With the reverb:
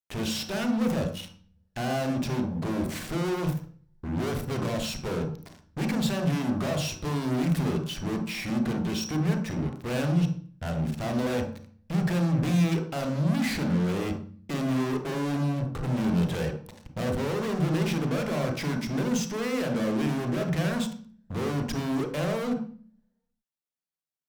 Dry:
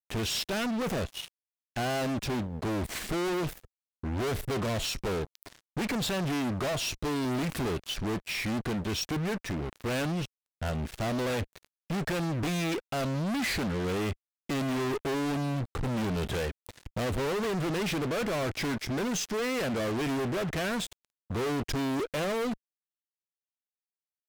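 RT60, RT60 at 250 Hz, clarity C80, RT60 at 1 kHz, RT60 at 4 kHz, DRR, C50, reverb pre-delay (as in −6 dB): 0.45 s, 0.80 s, 12.0 dB, 0.40 s, 0.40 s, 4.0 dB, 7.0 dB, 27 ms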